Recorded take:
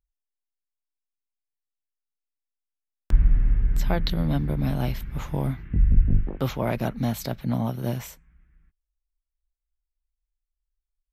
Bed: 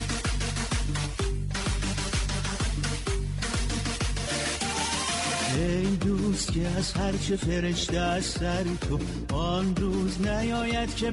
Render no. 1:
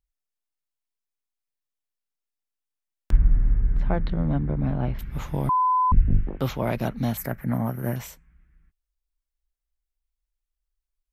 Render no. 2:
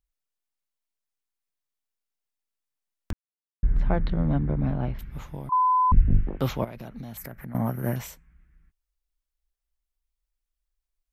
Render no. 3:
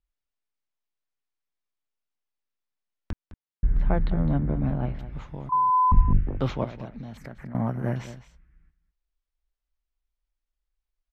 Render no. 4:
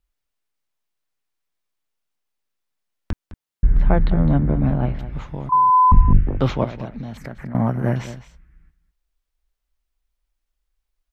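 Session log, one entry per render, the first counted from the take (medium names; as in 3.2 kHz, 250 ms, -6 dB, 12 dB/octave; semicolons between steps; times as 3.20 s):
3.17–4.99 s: low-pass 1.6 kHz; 5.49–5.92 s: bleep 1.01 kHz -17.5 dBFS; 7.17–7.96 s: FFT filter 920 Hz 0 dB, 1.9 kHz +8 dB, 3.7 kHz -21 dB, 11 kHz +6 dB
3.13–3.63 s: mute; 4.56–5.52 s: fade out, to -14 dB; 6.64–7.55 s: compression 12:1, threshold -34 dBFS
distance through air 120 m; delay 209 ms -14 dB
trim +7 dB; peak limiter -2 dBFS, peak gain reduction 2.5 dB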